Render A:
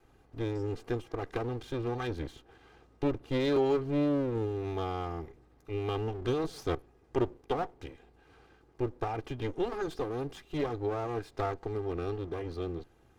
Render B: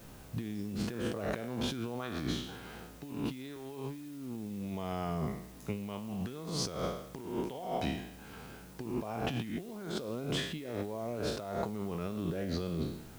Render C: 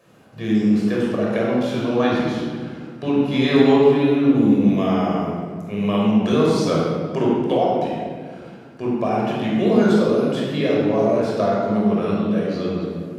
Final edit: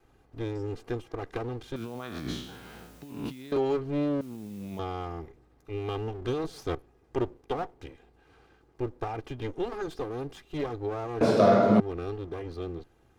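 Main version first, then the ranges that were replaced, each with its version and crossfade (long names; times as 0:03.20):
A
0:01.76–0:03.52: punch in from B
0:04.21–0:04.79: punch in from B
0:11.21–0:11.80: punch in from C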